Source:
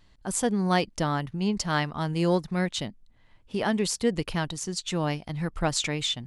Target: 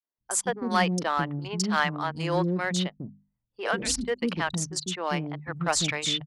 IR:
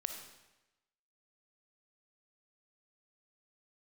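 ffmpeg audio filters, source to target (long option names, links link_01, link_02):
-filter_complex "[0:a]asettb=1/sr,asplit=3[link_01][link_02][link_03];[link_01]atrim=end=3.624[link_04];[link_02]atrim=start=3.62:end=4.02,asetpts=PTS-STARTPTS,afade=type=in:duration=0.004:curve=qsin,afade=type=out:start_time=0.396:duration=0.004:curve=qsin,afreqshift=-170[link_05];[link_03]atrim=start=4.016[link_06];[link_04][link_05]acrossfade=duration=0.004:curve1=hsin:curve2=qsin[link_07];[link_07][link_06]acrossfade=duration=0.004:curve1=qsin:curve2=hsin,highpass=89,acrossover=split=380|4000[link_08][link_09][link_10];[link_09]adelay=40[link_11];[link_08]adelay=190[link_12];[link_12][link_11][link_10]amix=inputs=3:normalize=0,anlmdn=2.51,equalizer=frequency=1300:width=0.95:gain=4.5,bandreject=frequency=50:width_type=h:width=6,bandreject=frequency=100:width_type=h:width=6,bandreject=frequency=150:width_type=h:width=6,bandreject=frequency=200:width_type=h:width=6,bandreject=frequency=250:width_type=h:width=6,asplit=2[link_13][link_14];[link_14]asoftclip=type=hard:threshold=-21dB,volume=-8dB[link_15];[link_13][link_15]amix=inputs=2:normalize=0,equalizer=frequency=5500:width=0.39:gain=4,volume=-3dB"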